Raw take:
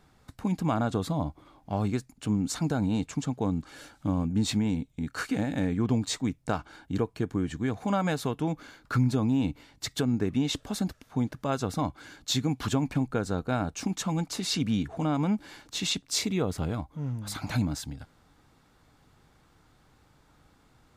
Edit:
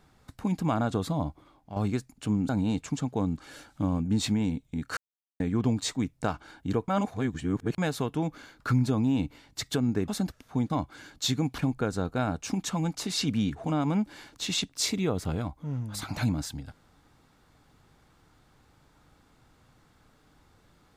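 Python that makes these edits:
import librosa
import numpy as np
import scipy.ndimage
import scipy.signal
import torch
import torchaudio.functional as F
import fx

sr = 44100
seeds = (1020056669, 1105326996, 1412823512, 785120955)

y = fx.edit(x, sr, fx.fade_out_to(start_s=1.27, length_s=0.49, floor_db=-9.5),
    fx.cut(start_s=2.49, length_s=0.25),
    fx.silence(start_s=5.22, length_s=0.43),
    fx.reverse_span(start_s=7.13, length_s=0.9),
    fx.cut(start_s=10.33, length_s=0.36),
    fx.cut(start_s=11.31, length_s=0.45),
    fx.cut(start_s=12.64, length_s=0.27), tone=tone)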